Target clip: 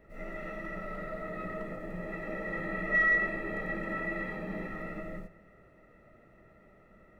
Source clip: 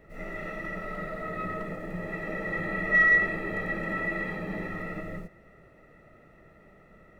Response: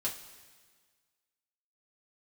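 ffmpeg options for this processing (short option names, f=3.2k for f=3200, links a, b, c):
-filter_complex "[0:a]asplit=2[a][b];[1:a]atrim=start_sample=2205,lowpass=2.7k[c];[b][c]afir=irnorm=-1:irlink=0,volume=-8.5dB[d];[a][d]amix=inputs=2:normalize=0,volume=-6dB"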